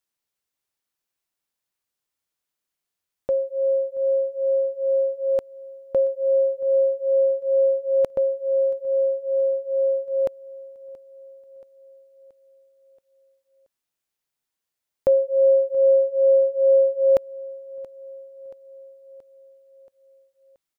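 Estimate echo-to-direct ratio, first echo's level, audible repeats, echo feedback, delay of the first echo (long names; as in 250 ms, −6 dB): −19.0 dB, −21.0 dB, 3, 58%, 678 ms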